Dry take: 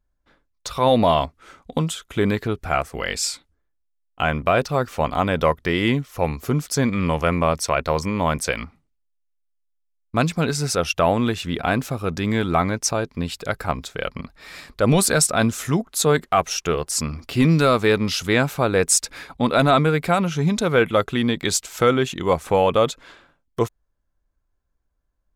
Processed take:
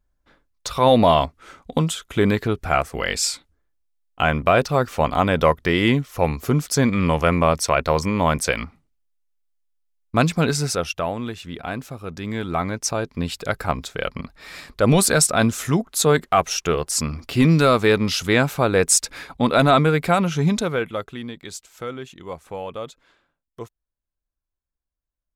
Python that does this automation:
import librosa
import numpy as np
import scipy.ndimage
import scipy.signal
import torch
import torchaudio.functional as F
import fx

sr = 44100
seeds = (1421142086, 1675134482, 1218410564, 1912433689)

y = fx.gain(x, sr, db=fx.line((10.55, 2.0), (11.12, -8.0), (12.06, -8.0), (13.27, 1.0), (20.55, 1.0), (20.8, -7.0), (21.42, -14.0)))